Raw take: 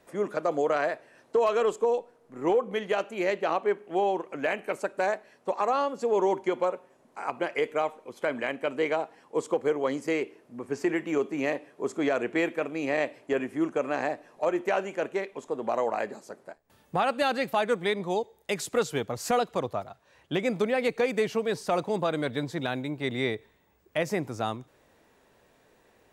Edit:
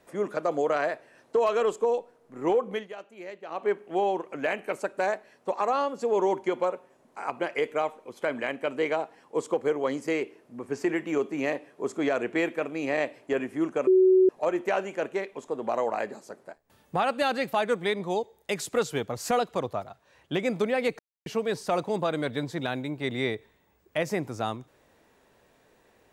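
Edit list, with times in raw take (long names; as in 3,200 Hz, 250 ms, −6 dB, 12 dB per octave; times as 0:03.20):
0:02.73–0:03.66: duck −13.5 dB, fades 0.16 s
0:13.87–0:14.29: beep over 374 Hz −15 dBFS
0:20.99–0:21.26: silence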